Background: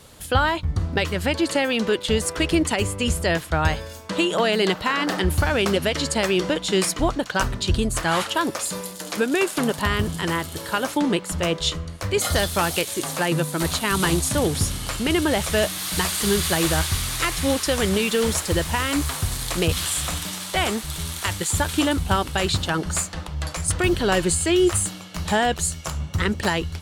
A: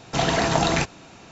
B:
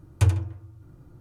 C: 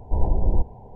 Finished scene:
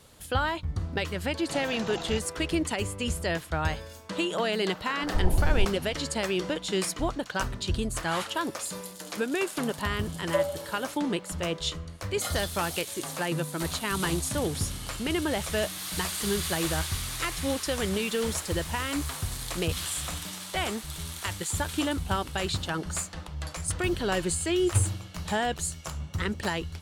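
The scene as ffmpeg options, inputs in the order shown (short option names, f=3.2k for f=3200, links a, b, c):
-filter_complex "[2:a]asplit=2[a][b];[0:a]volume=-7.5dB[c];[3:a]aemphasis=mode=production:type=50fm[d];[a]afreqshift=480[e];[1:a]atrim=end=1.31,asetpts=PTS-STARTPTS,volume=-16.5dB,afade=t=in:d=0.004:c=hsin,afade=t=out:st=1.306:d=0.004:c=hsin,adelay=1350[f];[d]atrim=end=0.95,asetpts=PTS-STARTPTS,volume=-4dB,afade=t=in:d=0.004:c=hsin,afade=t=out:st=0.946:d=0.004:c=hsin,adelay=5030[g];[e]atrim=end=1.2,asetpts=PTS-STARTPTS,volume=-7dB,afade=t=in:d=0.004:c=hsin,afade=t=out:st=1.196:d=0.004:c=hsin,adelay=10120[h];[b]atrim=end=1.2,asetpts=PTS-STARTPTS,volume=-6dB,afade=t=in:d=0.004:c=hsin,afade=t=out:st=1.196:d=0.004:c=hsin,adelay=24540[i];[c][f][g][h][i]amix=inputs=5:normalize=0"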